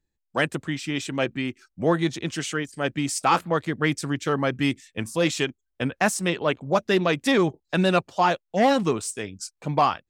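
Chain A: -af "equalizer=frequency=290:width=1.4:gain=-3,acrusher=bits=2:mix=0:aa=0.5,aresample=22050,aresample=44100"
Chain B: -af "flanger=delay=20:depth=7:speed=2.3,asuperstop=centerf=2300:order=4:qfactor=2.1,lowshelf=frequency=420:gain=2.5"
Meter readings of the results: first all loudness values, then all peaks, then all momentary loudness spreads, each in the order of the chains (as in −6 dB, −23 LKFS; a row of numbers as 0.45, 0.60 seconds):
−26.5, −27.0 LKFS; −7.0, −9.5 dBFS; 15, 9 LU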